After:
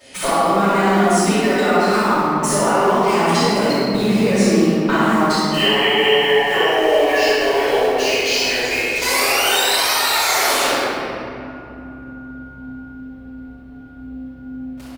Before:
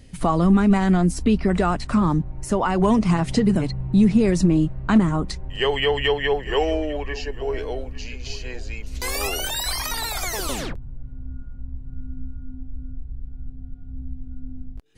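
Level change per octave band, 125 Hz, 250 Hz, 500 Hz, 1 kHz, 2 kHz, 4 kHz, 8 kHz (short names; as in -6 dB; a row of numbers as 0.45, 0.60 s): -3.0, +0.5, +8.5, +10.0, +12.0, +11.0, +10.0 dB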